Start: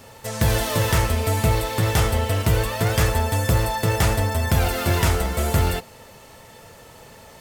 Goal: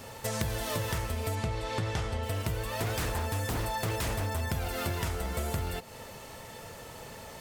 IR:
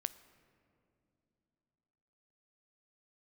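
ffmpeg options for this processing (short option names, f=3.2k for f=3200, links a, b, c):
-filter_complex "[0:a]asettb=1/sr,asplit=3[a][b][c];[a]atrim=end=1.354[d];[b]atrim=start=1.35:end=2.23,asetpts=PTS-STARTPTS,afade=t=in:d=0.004:c=qsin,afade=t=out:st=0.876:d=0.004:c=qsin,lowpass=6.5k[e];[c]atrim=start=2.226[f];[d][e]acrossfade=d=0.004:c1=hsin:c2=qsin[g];[g][f]acrossfade=d=0.004:c1=qsin:c2=hsin,asettb=1/sr,asplit=3[h][i][j];[h]atrim=end=2.784[k];[i]atrim=start=2.78:end=4.41,asetpts=PTS-STARTPTS,afade=t=in:d=0.004:c=qsin,afade=t=out:st=1.626:d=0.004:c=qsin,aeval=exprs='0.141*(abs(mod(val(0)/0.141+3,4)-2)-1)':c=same[l];[j]atrim=start=4.406[m];[k][l]acrossfade=d=0.004:c1=hsin:c2=qsin[n];[n][m]acrossfade=d=0.004:c1=qsin:c2=hsin,acompressor=threshold=-29dB:ratio=10"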